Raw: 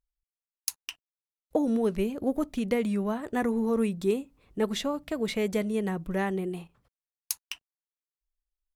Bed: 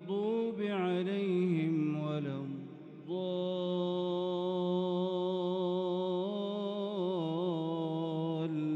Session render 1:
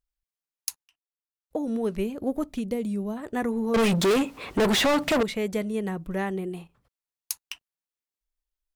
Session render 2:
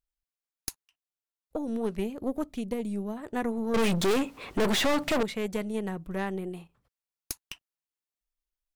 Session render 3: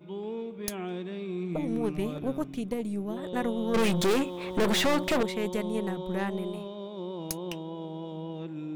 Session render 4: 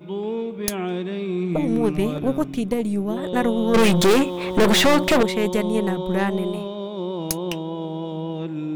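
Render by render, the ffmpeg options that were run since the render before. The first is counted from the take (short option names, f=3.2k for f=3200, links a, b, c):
-filter_complex "[0:a]asplit=3[a][b][c];[a]afade=t=out:st=2.6:d=0.02[d];[b]equalizer=f=1.6k:t=o:w=2:g=-12.5,afade=t=in:st=2.6:d=0.02,afade=t=out:st=3.16:d=0.02[e];[c]afade=t=in:st=3.16:d=0.02[f];[d][e][f]amix=inputs=3:normalize=0,asettb=1/sr,asplit=3[g][h][i];[g]atrim=end=3.744[j];[h]atrim=start=3.74:end=5.23,asetpts=PTS-STARTPTS,afade=t=in:d=0.004:c=qsin,afade=t=out:st=1.486:d=0.004:c=qsin,asplit=2[k][l];[l]highpass=f=720:p=1,volume=36dB,asoftclip=type=tanh:threshold=-14.5dB[m];[k][m]amix=inputs=2:normalize=0,lowpass=f=4.9k:p=1,volume=-6dB[n];[i]atrim=start=5.226[o];[j][n]acrossfade=d=0.004:c1=hsin:c2=qsin[p];[p][o]acrossfade=d=0.004:c1=qsin:c2=hsin,asplit=2[q][r];[q]atrim=end=0.84,asetpts=PTS-STARTPTS,afade=t=out:st=0.836:d=0.004:c=hsin[s];[r]atrim=start=0.84,asetpts=PTS-STARTPTS,afade=t=in:d=1.14[t];[s][t]concat=n=2:v=0:a=1"
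-af "aeval=exprs='(tanh(7.08*val(0)+0.7)-tanh(0.7))/7.08':c=same"
-filter_complex "[1:a]volume=-3dB[a];[0:a][a]amix=inputs=2:normalize=0"
-af "volume=9dB"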